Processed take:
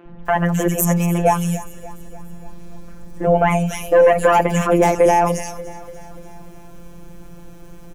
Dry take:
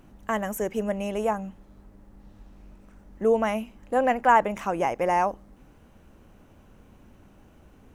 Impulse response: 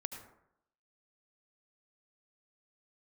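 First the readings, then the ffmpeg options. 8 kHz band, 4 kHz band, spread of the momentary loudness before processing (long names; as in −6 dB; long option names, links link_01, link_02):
+16.5 dB, +9.5 dB, 9 LU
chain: -filter_complex "[0:a]afftfilt=real='hypot(re,im)*cos(PI*b)':imag='0':win_size=1024:overlap=0.75,acrossover=split=240|2800[link_01][link_02][link_03];[link_01]adelay=60[link_04];[link_03]adelay=260[link_05];[link_04][link_02][link_05]amix=inputs=3:normalize=0,apsyclip=23dB,equalizer=frequency=1200:width_type=o:width=3:gain=-7,asplit=2[link_06][link_07];[link_07]aecho=0:1:292|584|876|1168|1460:0.133|0.0773|0.0449|0.026|0.0151[link_08];[link_06][link_08]amix=inputs=2:normalize=0,volume=-2dB"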